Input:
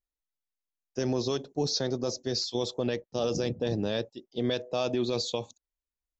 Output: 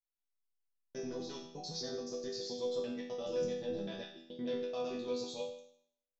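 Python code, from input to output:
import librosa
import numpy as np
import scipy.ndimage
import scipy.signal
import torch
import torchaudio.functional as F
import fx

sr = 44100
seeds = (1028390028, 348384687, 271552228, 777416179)

y = fx.local_reverse(x, sr, ms=86.0)
y = fx.resonator_bank(y, sr, root=52, chord='minor', decay_s=0.66)
y = y * 10.0 ** (9.0 / 20.0)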